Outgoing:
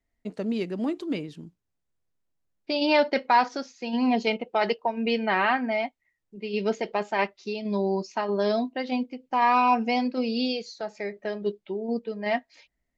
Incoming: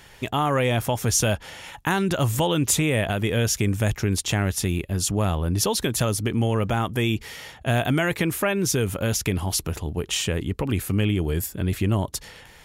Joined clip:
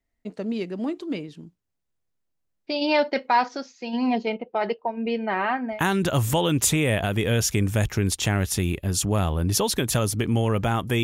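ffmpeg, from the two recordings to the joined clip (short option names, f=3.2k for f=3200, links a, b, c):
-filter_complex "[0:a]asettb=1/sr,asplit=3[a][b][c];[a]atrim=end=4.184[d];[b]atrim=start=4.18:end=5.82,asetpts=PTS-STARTPTS,afade=t=in:d=0.004:c=qsin,afade=t=out:st=1.636:d=0.004:c=qsin,lowpass=f=1.7k:p=1[e];[c]atrim=start=5.816[f];[d][e]acrossfade=d=0.004:c1=hsin:c2=qsin[g];[g][f]acrossfade=d=0.004:c1=qsin:c2=hsin,apad=whole_dur=11.03,atrim=end=11.03,atrim=end=5.82,asetpts=PTS-STARTPTS[h];[1:a]atrim=start=1.74:end=7.09,asetpts=PTS-STARTPTS[i];[h][i]acrossfade=d=0.14:c1=tri:c2=tri"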